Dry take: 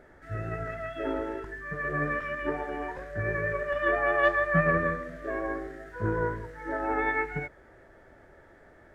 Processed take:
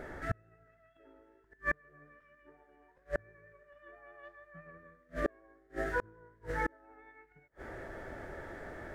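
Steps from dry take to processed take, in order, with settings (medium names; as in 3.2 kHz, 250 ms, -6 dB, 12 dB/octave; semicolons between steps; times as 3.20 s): inverted gate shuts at -29 dBFS, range -39 dB; trim +9.5 dB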